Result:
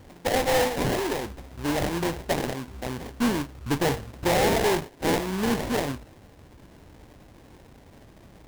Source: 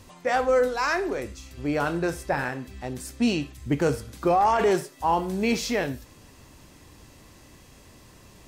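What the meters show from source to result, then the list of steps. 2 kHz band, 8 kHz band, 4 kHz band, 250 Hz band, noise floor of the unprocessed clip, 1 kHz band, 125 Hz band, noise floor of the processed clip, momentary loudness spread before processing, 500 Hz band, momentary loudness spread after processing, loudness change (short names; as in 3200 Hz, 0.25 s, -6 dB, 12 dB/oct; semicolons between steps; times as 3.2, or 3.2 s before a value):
-0.5 dB, +4.0 dB, +4.5 dB, 0.0 dB, -52 dBFS, -3.5 dB, +2.0 dB, -52 dBFS, 12 LU, -1.0 dB, 11 LU, -0.5 dB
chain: tube stage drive 20 dB, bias 0.45; sample-rate reducer 1300 Hz, jitter 20%; gain +2.5 dB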